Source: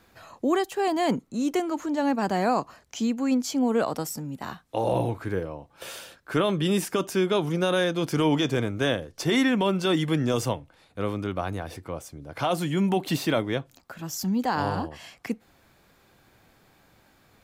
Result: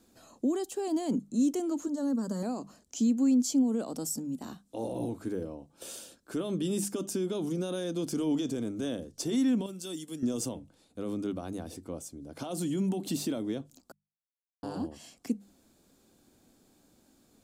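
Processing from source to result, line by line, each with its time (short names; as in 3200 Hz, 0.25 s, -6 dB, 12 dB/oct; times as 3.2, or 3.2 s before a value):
1.87–2.43 fixed phaser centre 500 Hz, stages 8
9.66–10.23 pre-emphasis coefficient 0.8
13.92–14.63 mute
whole clip: notches 50/100/150/200 Hz; limiter -20.5 dBFS; ten-band EQ 125 Hz -5 dB, 250 Hz +10 dB, 1000 Hz -5 dB, 2000 Hz -10 dB, 8000 Hz +9 dB; gain -6 dB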